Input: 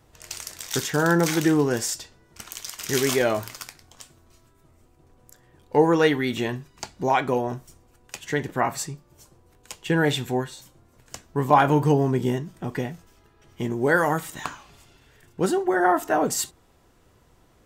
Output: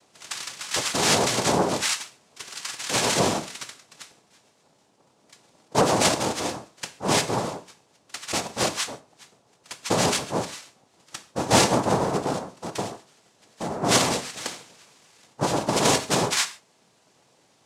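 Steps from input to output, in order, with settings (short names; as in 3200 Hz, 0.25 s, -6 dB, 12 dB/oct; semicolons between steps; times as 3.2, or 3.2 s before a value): tilt shelf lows -4 dB; formant shift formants -3 st; noise vocoder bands 2; non-linear reverb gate 0.17 s falling, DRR 10.5 dB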